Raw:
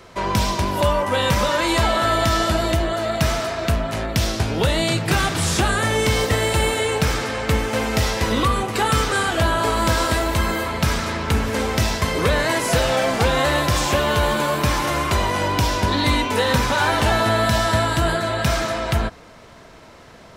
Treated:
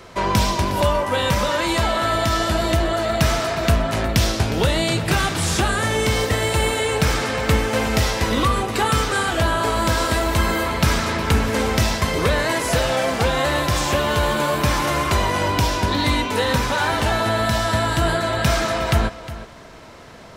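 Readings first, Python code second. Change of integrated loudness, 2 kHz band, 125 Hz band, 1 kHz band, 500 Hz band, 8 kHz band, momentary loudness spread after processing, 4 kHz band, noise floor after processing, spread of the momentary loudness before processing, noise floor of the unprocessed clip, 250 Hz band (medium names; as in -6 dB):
0.0 dB, 0.0 dB, +0.5 dB, 0.0 dB, 0.0 dB, 0.0 dB, 1 LU, 0.0 dB, -41 dBFS, 4 LU, -44 dBFS, +0.5 dB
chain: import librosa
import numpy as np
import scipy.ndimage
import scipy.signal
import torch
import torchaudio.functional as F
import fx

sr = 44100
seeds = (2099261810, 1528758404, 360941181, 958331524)

p1 = fx.rider(x, sr, range_db=10, speed_s=0.5)
y = p1 + fx.echo_single(p1, sr, ms=360, db=-15.0, dry=0)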